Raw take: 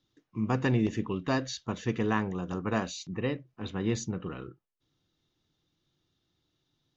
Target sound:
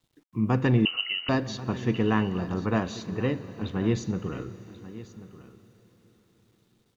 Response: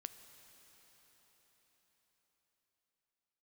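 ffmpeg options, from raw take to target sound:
-filter_complex "[0:a]asplit=2[a][b];[1:a]atrim=start_sample=2205,lowpass=5.7k[c];[b][c]afir=irnorm=-1:irlink=0,volume=6dB[d];[a][d]amix=inputs=2:normalize=0,acrusher=bits=10:mix=0:aa=0.000001,asettb=1/sr,asplit=3[e][f][g];[e]atrim=end=0.854[h];[f]atrim=start=0.85:end=1.29,asetpts=PTS-STARTPTS,afade=t=in:d=0.004:c=qsin,afade=t=out:st=0.436:d=0.004:c=qsin,lowpass=f=2.6k:t=q:w=0.5098,lowpass=f=2.6k:t=q:w=0.6013,lowpass=f=2.6k:t=q:w=0.9,lowpass=f=2.6k:t=q:w=2.563,afreqshift=-3100[i];[g]atrim=start=1.286[j];[h][i]acrossfade=d=0.004:c1=hsin:c2=qsin[k];[k][j]acrossfade=d=0.004:c1=qsin:c2=hsin,lowshelf=f=350:g=4.5,aecho=1:1:1086:0.158,volume=-5dB"

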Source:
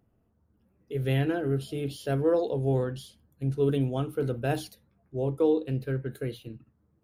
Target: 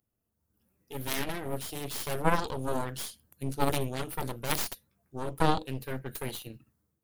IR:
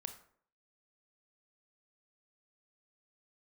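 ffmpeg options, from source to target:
-af "crystalizer=i=6.5:c=0,aeval=exprs='0.335*(cos(1*acos(clip(val(0)/0.335,-1,1)))-cos(1*PI/2))+0.0944*(cos(3*acos(clip(val(0)/0.335,-1,1)))-cos(3*PI/2))+0.075*(cos(4*acos(clip(val(0)/0.335,-1,1)))-cos(4*PI/2))+0.0237*(cos(7*acos(clip(val(0)/0.335,-1,1)))-cos(7*PI/2))':c=same,dynaudnorm=f=210:g=5:m=12.5dB,volume=-7dB"

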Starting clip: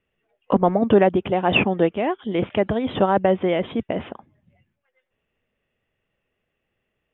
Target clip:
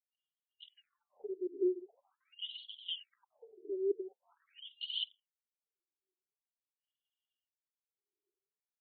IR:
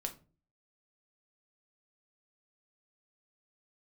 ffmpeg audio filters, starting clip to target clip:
-filter_complex "[0:a]highshelf=f=2.3k:g=12,agate=range=-12dB:threshold=-32dB:ratio=16:detection=peak,adynamicsmooth=sensitivity=7:basefreq=2.2k,asplit=2[a][b];[1:a]atrim=start_sample=2205,asetrate=43659,aresample=44100[c];[b][c]afir=irnorm=-1:irlink=0,volume=-10dB[d];[a][d]amix=inputs=2:normalize=0,afftfilt=real='re*(1-between(b*sr/4096,450,2800))':imag='im*(1-between(b*sr/4096,450,2800))':win_size=4096:overlap=0.75,areverse,acompressor=threshold=-31dB:ratio=5,areverse,aphaser=in_gain=1:out_gain=1:delay=2.6:decay=0.6:speed=1.4:type=triangular,aexciter=amount=1.5:drive=6.4:freq=2.8k,atempo=0.81,afftfilt=real='re*between(b*sr/1024,400*pow(3200/400,0.5+0.5*sin(2*PI*0.45*pts/sr))/1.41,400*pow(3200/400,0.5+0.5*sin(2*PI*0.45*pts/sr))*1.41)':imag='im*between(b*sr/1024,400*pow(3200/400,0.5+0.5*sin(2*PI*0.45*pts/sr))/1.41,400*pow(3200/400,0.5+0.5*sin(2*PI*0.45*pts/sr))*1.41)':win_size=1024:overlap=0.75,volume=-1.5dB"

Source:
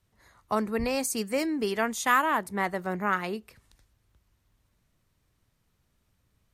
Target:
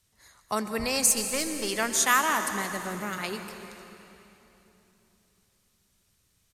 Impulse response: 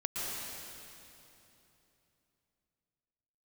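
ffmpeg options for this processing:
-filter_complex "[0:a]asplit=3[a][b][c];[a]afade=t=out:st=1.1:d=0.02[d];[b]aeval=exprs='if(lt(val(0),0),0.447*val(0),val(0))':c=same,afade=t=in:st=1.1:d=0.02,afade=t=out:st=1.68:d=0.02[e];[c]afade=t=in:st=1.68:d=0.02[f];[d][e][f]amix=inputs=3:normalize=0,equalizer=f=8.1k:w=0.31:g=14.5,asplit=6[g][h][i][j][k][l];[h]adelay=86,afreqshift=-32,volume=-21dB[m];[i]adelay=172,afreqshift=-64,volume=-24.9dB[n];[j]adelay=258,afreqshift=-96,volume=-28.8dB[o];[k]adelay=344,afreqshift=-128,volume=-32.6dB[p];[l]adelay=430,afreqshift=-160,volume=-36.5dB[q];[g][m][n][o][p][q]amix=inputs=6:normalize=0,asettb=1/sr,asplit=3[r][s][t];[r]atrim=end=2.504[u];[s]atrim=start=2.5:end=3.18,asetpts=PTS-STARTPTS,afade=t=in:d=0.004:c=qsin,afade=t=out:st=0.676:d=0.004:c=qsin,acrossover=split=440|3000[v][w][x];[w]acompressor=threshold=-32dB:ratio=6[y];[v][y][x]amix=inputs=3:normalize=0[z];[t]atrim=start=3.176[aa];[u][z]acrossfade=d=0.004:c1=hsin:c2=qsin[ab];[ab][aa]acrossfade=d=0.004:c1=qsin:c2=hsin,asplit=2[ac][ad];[1:a]atrim=start_sample=2205,asetrate=39690,aresample=44100[ae];[ad][ae]afir=irnorm=-1:irlink=0,volume=-10.5dB[af];[ac][af]amix=inputs=2:normalize=0,volume=-5.5dB"

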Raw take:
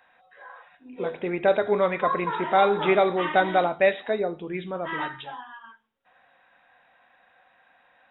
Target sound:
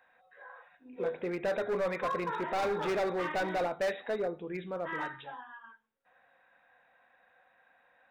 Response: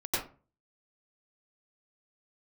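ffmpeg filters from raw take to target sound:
-af "volume=22dB,asoftclip=hard,volume=-22dB,equalizer=f=500:t=o:w=0.33:g=5,equalizer=f=1.6k:t=o:w=0.33:g=3,equalizer=f=3.15k:t=o:w=0.33:g=-6,volume=-7dB"

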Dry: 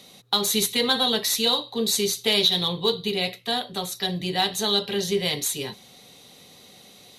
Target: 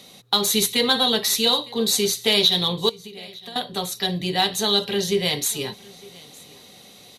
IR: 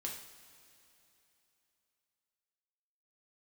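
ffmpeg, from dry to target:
-filter_complex "[0:a]asettb=1/sr,asplit=3[a][b][c];[a]atrim=end=2.894[d];[b]atrim=start=2.89:end=3.56,asetpts=PTS-STARTPTS,afade=t=in:d=0.004:c=qsin,afade=t=out:st=0.666:d=0.004:c=qsin,acompressor=threshold=-39dB:ratio=10[e];[c]atrim=start=3.556[f];[d][e]acrossfade=d=0.004:c1=hsin:c2=qsin[g];[g][f]acrossfade=d=0.004:c1=qsin:c2=hsin,aecho=1:1:908:0.0668,volume=2.5dB"

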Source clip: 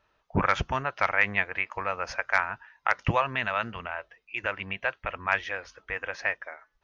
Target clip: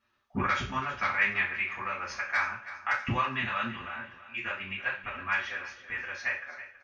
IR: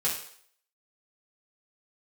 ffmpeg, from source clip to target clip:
-filter_complex "[0:a]equalizer=f=680:t=o:w=0.37:g=-14.5,aecho=1:1:327|654|981:0.188|0.0697|0.0258[a];[1:a]atrim=start_sample=2205,asetrate=66150,aresample=44100[b];[a][b]afir=irnorm=-1:irlink=0,volume=-5.5dB"

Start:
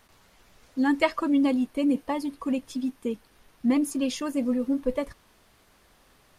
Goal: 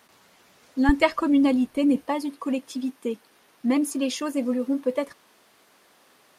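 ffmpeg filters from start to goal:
-af "asetnsamples=n=441:p=0,asendcmd='0.89 highpass f 44;2.06 highpass f 250',highpass=170,volume=3dB"

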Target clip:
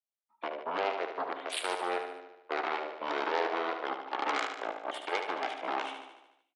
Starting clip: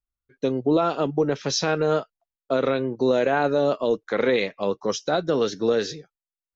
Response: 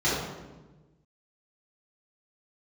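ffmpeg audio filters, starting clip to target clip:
-filter_complex "[0:a]aeval=exprs='0.316*(cos(1*acos(clip(val(0)/0.316,-1,1)))-cos(1*PI/2))+0.00891*(cos(5*acos(clip(val(0)/0.316,-1,1)))-cos(5*PI/2))+0.0891*(cos(7*acos(clip(val(0)/0.316,-1,1)))-cos(7*PI/2))':c=same,asetrate=25476,aresample=44100,atempo=1.73107,highpass=f=480:w=0.5412,highpass=f=480:w=1.3066,aecho=1:1:74|148|222|296|370|444|518|592:0.422|0.249|0.147|0.0866|0.0511|0.0301|0.0178|0.0105,asplit=2[a][b];[1:a]atrim=start_sample=2205,asetrate=79380,aresample=44100[c];[b][c]afir=irnorm=-1:irlink=0,volume=-24.5dB[d];[a][d]amix=inputs=2:normalize=0,volume=-6.5dB"

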